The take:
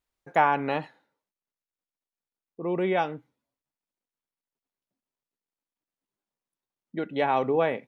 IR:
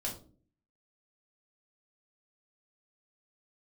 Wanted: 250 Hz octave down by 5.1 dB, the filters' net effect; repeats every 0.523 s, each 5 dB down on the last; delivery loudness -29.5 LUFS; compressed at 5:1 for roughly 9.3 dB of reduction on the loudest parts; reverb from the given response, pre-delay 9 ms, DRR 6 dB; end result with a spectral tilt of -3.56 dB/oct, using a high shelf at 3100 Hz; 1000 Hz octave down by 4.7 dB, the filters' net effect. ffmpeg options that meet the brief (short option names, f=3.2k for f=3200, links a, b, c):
-filter_complex "[0:a]equalizer=f=250:t=o:g=-7.5,equalizer=f=1k:t=o:g=-6.5,highshelf=f=3.1k:g=8,acompressor=threshold=-30dB:ratio=5,aecho=1:1:523|1046|1569|2092|2615|3138|3661:0.562|0.315|0.176|0.0988|0.0553|0.031|0.0173,asplit=2[a][b];[1:a]atrim=start_sample=2205,adelay=9[c];[b][c]afir=irnorm=-1:irlink=0,volume=-7.5dB[d];[a][d]amix=inputs=2:normalize=0,volume=7dB"